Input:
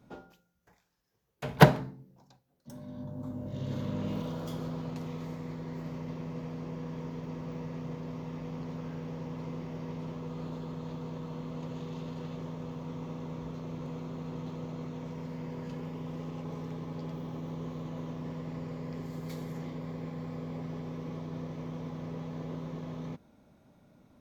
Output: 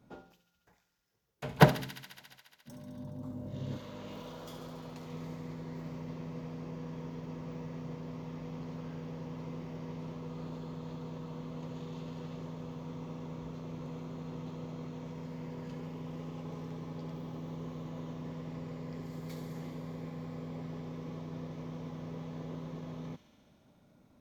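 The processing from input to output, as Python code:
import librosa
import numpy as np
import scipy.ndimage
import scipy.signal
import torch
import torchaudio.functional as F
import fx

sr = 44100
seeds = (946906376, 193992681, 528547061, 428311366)

y = fx.peak_eq(x, sr, hz=140.0, db=fx.line((3.76, -13.5), (5.1, -5.5)), octaves=2.7, at=(3.76, 5.1), fade=0.02)
y = fx.echo_wet_highpass(y, sr, ms=70, feedback_pct=82, hz=2700.0, wet_db=-9)
y = F.gain(torch.from_numpy(y), -3.0).numpy()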